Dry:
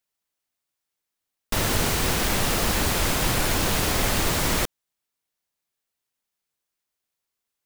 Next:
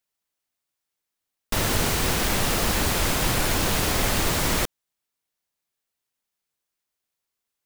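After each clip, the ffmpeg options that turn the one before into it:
-af anull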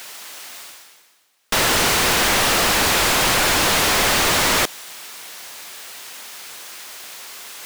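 -filter_complex "[0:a]areverse,acompressor=mode=upward:threshold=0.0251:ratio=2.5,areverse,asplit=2[s0][s1];[s1]highpass=f=720:p=1,volume=28.2,asoftclip=type=tanh:threshold=0.335[s2];[s0][s2]amix=inputs=2:normalize=0,lowpass=f=5900:p=1,volume=0.501"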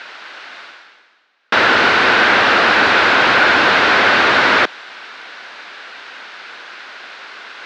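-af "highpass=160,equalizer=f=160:t=q:w=4:g=-10,equalizer=f=1500:t=q:w=4:g=8,equalizer=f=3200:t=q:w=4:g=-3,lowpass=f=3800:w=0.5412,lowpass=f=3800:w=1.3066,volume=1.88"

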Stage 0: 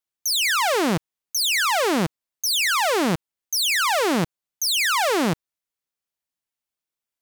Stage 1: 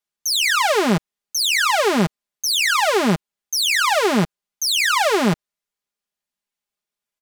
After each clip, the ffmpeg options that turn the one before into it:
-af "highshelf=f=11000:g=-7,aecho=1:1:4.9:0.7,volume=1.19"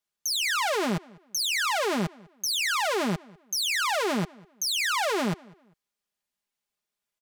-filter_complex "[0:a]alimiter=limit=0.0944:level=0:latency=1:release=40,asplit=2[s0][s1];[s1]adelay=199,lowpass=f=3200:p=1,volume=0.0668,asplit=2[s2][s3];[s3]adelay=199,lowpass=f=3200:p=1,volume=0.3[s4];[s0][s2][s4]amix=inputs=3:normalize=0"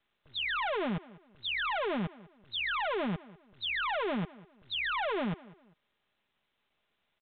-af "asoftclip=type=hard:threshold=0.0447,volume=0.75" -ar 8000 -c:a pcm_mulaw

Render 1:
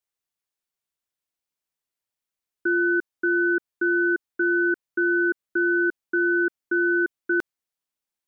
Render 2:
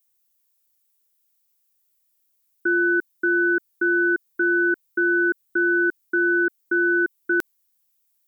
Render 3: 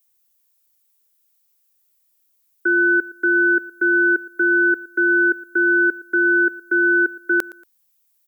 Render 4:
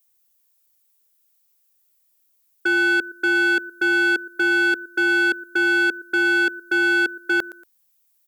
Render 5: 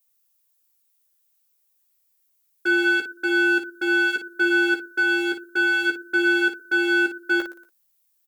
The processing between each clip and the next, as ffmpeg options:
-af "aemphasis=mode=production:type=75fm,volume=1.19"
-af "highpass=f=330:w=0.5412,highpass=f=330:w=1.3066,aecho=1:1:116|232:0.1|0.029,volume=1.58"
-af "equalizer=f=660:t=o:w=0.29:g=3.5,volume=5.96,asoftclip=hard,volume=0.168"
-filter_complex "[0:a]flanger=delay=3.4:depth=4.3:regen=-42:speed=0.28:shape=sinusoidal,asplit=2[s0][s1];[s1]aecho=0:1:14|55:0.501|0.376[s2];[s0][s2]amix=inputs=2:normalize=0"

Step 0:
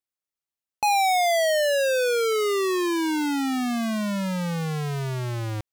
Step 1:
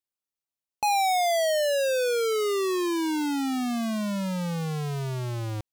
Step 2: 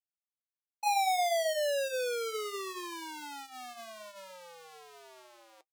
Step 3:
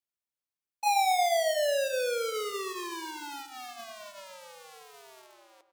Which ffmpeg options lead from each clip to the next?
-af "equalizer=f=1800:t=o:w=0.85:g=-4.5,volume=0.794"
-af "flanger=delay=5.1:depth=5.9:regen=-64:speed=0.68:shape=triangular,agate=range=0.0224:threshold=0.0447:ratio=3:detection=peak,highpass=f=480:w=0.5412,highpass=f=480:w=1.3066"
-filter_complex "[0:a]asplit=2[s0][s1];[s1]acrusher=bits=6:mix=0:aa=0.000001,volume=0.398[s2];[s0][s2]amix=inputs=2:normalize=0,asplit=2[s3][s4];[s4]adelay=118,lowpass=f=1700:p=1,volume=0.316,asplit=2[s5][s6];[s6]adelay=118,lowpass=f=1700:p=1,volume=0.48,asplit=2[s7][s8];[s8]adelay=118,lowpass=f=1700:p=1,volume=0.48,asplit=2[s9][s10];[s10]adelay=118,lowpass=f=1700:p=1,volume=0.48,asplit=2[s11][s12];[s12]adelay=118,lowpass=f=1700:p=1,volume=0.48[s13];[s3][s5][s7][s9][s11][s13]amix=inputs=6:normalize=0"

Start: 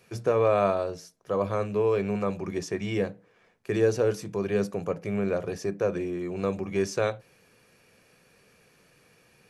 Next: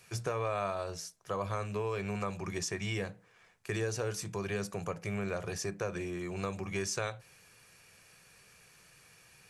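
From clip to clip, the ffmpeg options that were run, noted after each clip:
-af "equalizer=f=250:t=o:w=1:g=-10,equalizer=f=500:t=o:w=1:g=-7,equalizer=f=8000:t=o:w=1:g=6,acompressor=threshold=0.0224:ratio=3,volume=1.19"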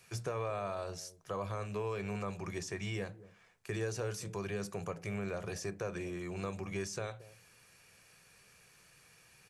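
-filter_complex "[0:a]acrossover=split=710[s0][s1];[s0]aecho=1:1:226:0.158[s2];[s1]alimiter=level_in=2.51:limit=0.0631:level=0:latency=1:release=12,volume=0.398[s3];[s2][s3]amix=inputs=2:normalize=0,volume=0.75"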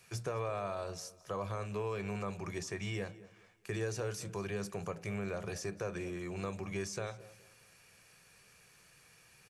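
-af "aecho=1:1:211|422|633:0.0891|0.0365|0.015"

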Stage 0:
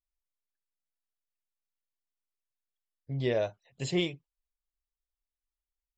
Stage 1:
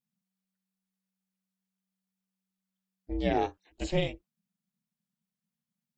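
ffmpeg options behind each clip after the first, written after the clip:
-filter_complex "[0:a]acrossover=split=2800[s0][s1];[s1]acompressor=threshold=0.00794:ratio=4:attack=1:release=60[s2];[s0][s2]amix=inputs=2:normalize=0,aeval=exprs='val(0)*sin(2*PI*190*n/s)':c=same,volume=1.58"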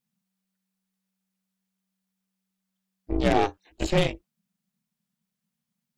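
-af "aeval=exprs='0.188*(cos(1*acos(clip(val(0)/0.188,-1,1)))-cos(1*PI/2))+0.0211*(cos(8*acos(clip(val(0)/0.188,-1,1)))-cos(8*PI/2))':c=same,volume=1.88"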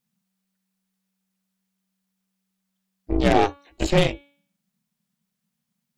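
-af "bandreject=f=283.3:t=h:w=4,bandreject=f=566.6:t=h:w=4,bandreject=f=849.9:t=h:w=4,bandreject=f=1133.2:t=h:w=4,bandreject=f=1416.5:t=h:w=4,bandreject=f=1699.8:t=h:w=4,bandreject=f=1983.1:t=h:w=4,bandreject=f=2266.4:t=h:w=4,bandreject=f=2549.7:t=h:w=4,bandreject=f=2833:t=h:w=4,bandreject=f=3116.3:t=h:w=4,bandreject=f=3399.6:t=h:w=4,bandreject=f=3682.9:t=h:w=4,bandreject=f=3966.2:t=h:w=4,bandreject=f=4249.5:t=h:w=4,volume=1.58"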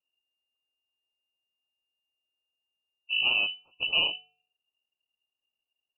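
-af "asuperstop=centerf=1000:order=8:qfactor=0.62,lowpass=f=2600:t=q:w=0.5098,lowpass=f=2600:t=q:w=0.6013,lowpass=f=2600:t=q:w=0.9,lowpass=f=2600:t=q:w=2.563,afreqshift=-3000,volume=0.501"

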